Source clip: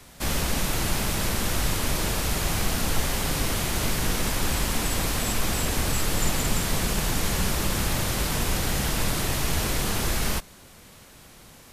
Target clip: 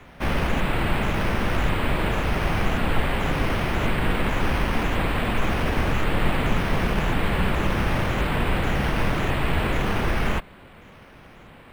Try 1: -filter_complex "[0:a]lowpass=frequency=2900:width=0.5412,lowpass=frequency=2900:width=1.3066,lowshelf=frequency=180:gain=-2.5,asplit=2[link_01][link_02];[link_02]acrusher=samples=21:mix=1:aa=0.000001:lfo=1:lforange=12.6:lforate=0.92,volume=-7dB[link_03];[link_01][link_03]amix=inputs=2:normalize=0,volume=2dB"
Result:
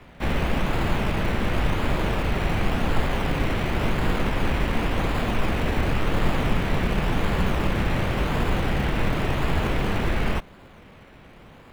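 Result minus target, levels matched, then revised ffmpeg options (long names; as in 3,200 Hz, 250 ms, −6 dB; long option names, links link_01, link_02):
sample-and-hold swept by an LFO: distortion +9 dB
-filter_complex "[0:a]lowpass=frequency=2900:width=0.5412,lowpass=frequency=2900:width=1.3066,lowshelf=frequency=180:gain=-2.5,asplit=2[link_01][link_02];[link_02]acrusher=samples=5:mix=1:aa=0.000001:lfo=1:lforange=3:lforate=0.92,volume=-7dB[link_03];[link_01][link_03]amix=inputs=2:normalize=0,volume=2dB"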